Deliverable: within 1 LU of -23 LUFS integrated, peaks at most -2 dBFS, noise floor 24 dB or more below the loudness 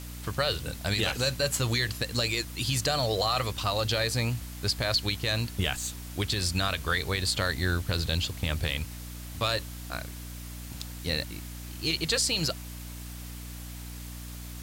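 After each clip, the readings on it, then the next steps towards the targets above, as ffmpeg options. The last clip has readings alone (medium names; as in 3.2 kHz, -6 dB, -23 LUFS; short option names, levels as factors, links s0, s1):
hum 60 Hz; highest harmonic 300 Hz; hum level -38 dBFS; noise floor -41 dBFS; noise floor target -53 dBFS; loudness -28.5 LUFS; peak level -14.5 dBFS; loudness target -23.0 LUFS
-> -af "bandreject=f=60:t=h:w=6,bandreject=f=120:t=h:w=6,bandreject=f=180:t=h:w=6,bandreject=f=240:t=h:w=6,bandreject=f=300:t=h:w=6"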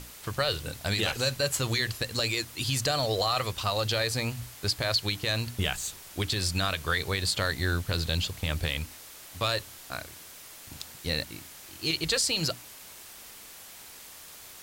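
hum not found; noise floor -48 dBFS; noise floor target -53 dBFS
-> -af "afftdn=nr=6:nf=-48"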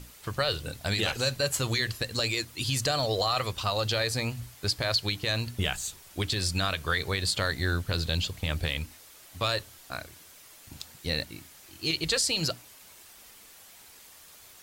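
noise floor -52 dBFS; noise floor target -53 dBFS
-> -af "afftdn=nr=6:nf=-52"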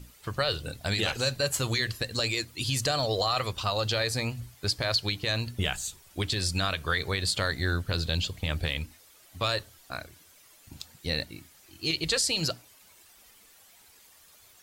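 noise floor -57 dBFS; loudness -29.0 LUFS; peak level -14.0 dBFS; loudness target -23.0 LUFS
-> -af "volume=2"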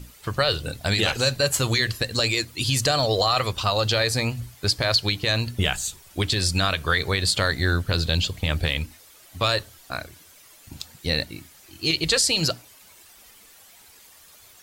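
loudness -23.0 LUFS; peak level -8.0 dBFS; noise floor -51 dBFS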